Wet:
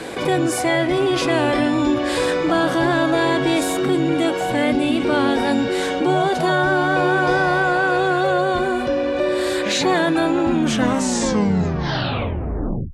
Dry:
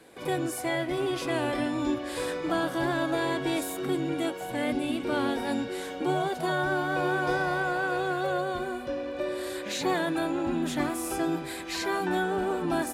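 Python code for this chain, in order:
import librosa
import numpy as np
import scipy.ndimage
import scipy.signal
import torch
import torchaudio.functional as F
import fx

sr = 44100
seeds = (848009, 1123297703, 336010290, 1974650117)

y = fx.tape_stop_end(x, sr, length_s=2.45)
y = scipy.signal.sosfilt(scipy.signal.butter(2, 8000.0, 'lowpass', fs=sr, output='sos'), y)
y = fx.env_flatten(y, sr, amount_pct=50)
y = F.gain(torch.from_numpy(y), 8.5).numpy()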